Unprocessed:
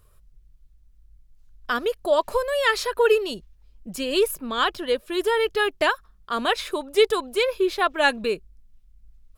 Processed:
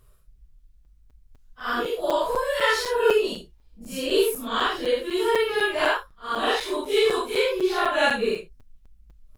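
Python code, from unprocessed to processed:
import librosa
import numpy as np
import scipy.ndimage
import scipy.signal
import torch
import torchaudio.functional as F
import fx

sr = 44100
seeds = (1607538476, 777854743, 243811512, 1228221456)

y = fx.phase_scramble(x, sr, seeds[0], window_ms=200)
y = fx.buffer_crackle(y, sr, first_s=0.85, period_s=0.25, block=256, kind='zero')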